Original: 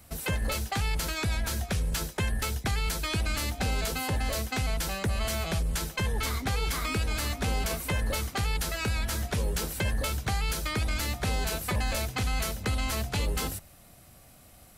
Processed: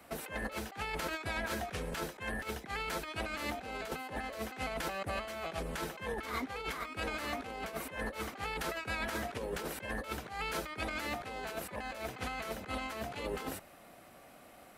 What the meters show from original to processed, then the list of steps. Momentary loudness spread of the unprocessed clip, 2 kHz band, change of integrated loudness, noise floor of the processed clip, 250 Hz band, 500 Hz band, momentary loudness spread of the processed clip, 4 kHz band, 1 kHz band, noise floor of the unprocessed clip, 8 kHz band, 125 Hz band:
1 LU, −4.5 dB, −8.5 dB, −56 dBFS, −7.0 dB, −3.0 dB, 4 LU, −10.0 dB, −3.5 dB, −54 dBFS, −13.5 dB, −17.0 dB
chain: three-way crossover with the lows and the highs turned down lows −20 dB, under 230 Hz, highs −13 dB, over 2,800 Hz
compressor whose output falls as the input rises −39 dBFS, ratio −0.5
level +1 dB

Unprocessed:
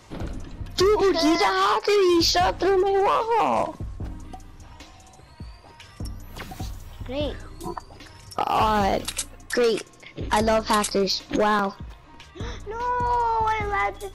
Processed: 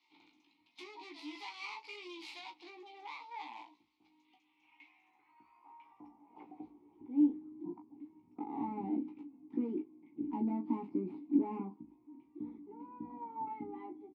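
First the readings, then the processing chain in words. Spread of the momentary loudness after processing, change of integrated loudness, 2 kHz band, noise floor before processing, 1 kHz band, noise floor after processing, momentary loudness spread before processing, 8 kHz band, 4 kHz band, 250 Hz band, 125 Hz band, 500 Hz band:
22 LU, −17.0 dB, −23.0 dB, −49 dBFS, −23.5 dB, −74 dBFS, 18 LU, below −35 dB, below −25 dB, −9.0 dB, −21.5 dB, −26.0 dB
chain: stylus tracing distortion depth 0.36 ms
band-pass filter sweep 4,200 Hz → 240 Hz, 0:04.15–0:07.44
formant filter u
on a send: ambience of single reflections 17 ms −4 dB, 36 ms −10.5 dB
on the sum: level +4.5 dB

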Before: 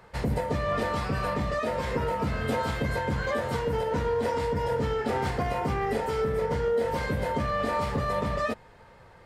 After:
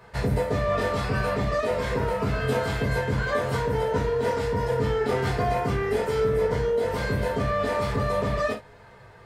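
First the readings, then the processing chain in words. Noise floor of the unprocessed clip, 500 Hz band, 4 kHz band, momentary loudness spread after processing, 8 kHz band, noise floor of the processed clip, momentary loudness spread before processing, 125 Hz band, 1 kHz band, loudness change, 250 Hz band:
−53 dBFS, +3.5 dB, +2.5 dB, 2 LU, +3.0 dB, −49 dBFS, 2 LU, +4.0 dB, +0.5 dB, +3.0 dB, +1.5 dB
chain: reverb whose tail is shaped and stops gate 90 ms falling, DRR −1 dB

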